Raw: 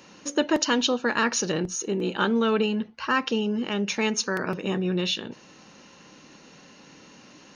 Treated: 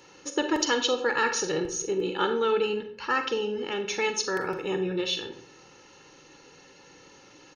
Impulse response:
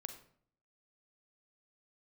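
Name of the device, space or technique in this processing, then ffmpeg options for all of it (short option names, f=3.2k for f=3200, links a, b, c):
microphone above a desk: -filter_complex "[0:a]aecho=1:1:2.3:0.71[a];[1:a]atrim=start_sample=2205[b];[a][b]afir=irnorm=-1:irlink=0"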